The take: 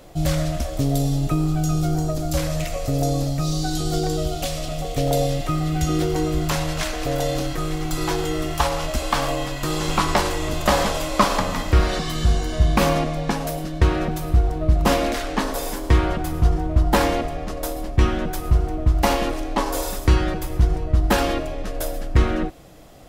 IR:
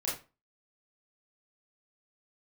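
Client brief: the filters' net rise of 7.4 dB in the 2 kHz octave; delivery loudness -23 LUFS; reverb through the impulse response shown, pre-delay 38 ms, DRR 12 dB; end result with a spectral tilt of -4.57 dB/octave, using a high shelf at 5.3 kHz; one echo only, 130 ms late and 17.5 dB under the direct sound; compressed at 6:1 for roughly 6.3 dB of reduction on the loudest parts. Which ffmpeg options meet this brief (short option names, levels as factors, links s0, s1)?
-filter_complex "[0:a]equalizer=f=2000:t=o:g=8,highshelf=f=5300:g=8,acompressor=threshold=0.141:ratio=6,aecho=1:1:130:0.133,asplit=2[s0][s1];[1:a]atrim=start_sample=2205,adelay=38[s2];[s1][s2]afir=irnorm=-1:irlink=0,volume=0.15[s3];[s0][s3]amix=inputs=2:normalize=0,volume=0.944"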